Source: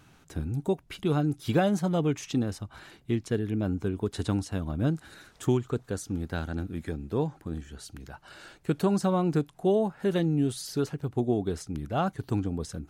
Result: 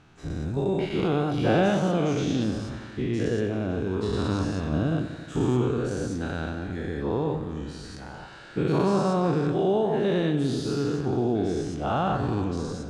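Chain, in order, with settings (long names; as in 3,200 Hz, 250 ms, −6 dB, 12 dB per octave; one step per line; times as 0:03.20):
every bin's largest magnitude spread in time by 240 ms
high-frequency loss of the air 93 metres
feedback echo with a swinging delay time 90 ms, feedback 72%, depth 56 cents, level −12.5 dB
level −3 dB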